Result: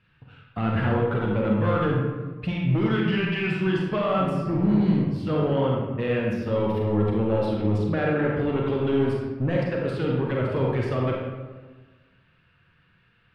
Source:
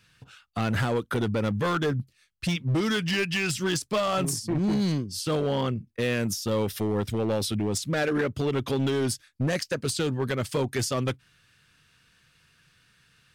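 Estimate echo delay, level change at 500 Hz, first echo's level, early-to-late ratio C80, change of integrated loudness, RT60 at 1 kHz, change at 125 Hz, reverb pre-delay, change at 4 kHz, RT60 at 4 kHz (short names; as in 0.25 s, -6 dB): none, +3.5 dB, none, 2.5 dB, +3.0 dB, 1.3 s, +4.0 dB, 32 ms, -7.0 dB, 0.75 s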